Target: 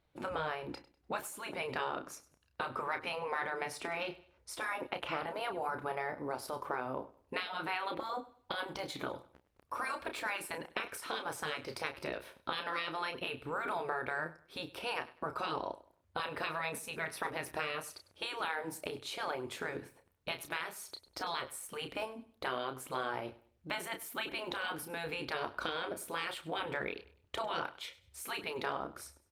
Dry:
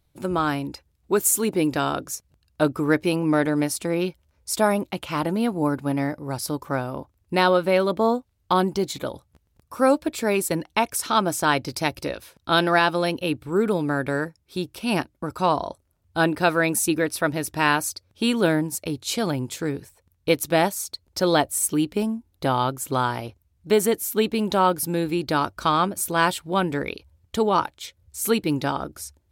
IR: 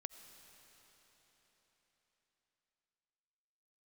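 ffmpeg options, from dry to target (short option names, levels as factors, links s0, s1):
-filter_complex "[0:a]asetnsamples=n=441:p=0,asendcmd='5.35 highshelf g -3',highshelf=f=9900:g=-9.5,afftfilt=real='re*lt(hypot(re,im),0.251)':imag='im*lt(hypot(re,im),0.251)':win_size=1024:overlap=0.75,acompressor=threshold=0.0282:ratio=20,bass=f=250:g=-11,treble=f=4000:g=-12,asplit=2[s0][s1];[s1]adelay=31,volume=0.398[s2];[s0][s2]amix=inputs=2:normalize=0,aecho=1:1:99|198|297:0.126|0.039|0.0121" -ar 48000 -c:a libopus -b:a 48k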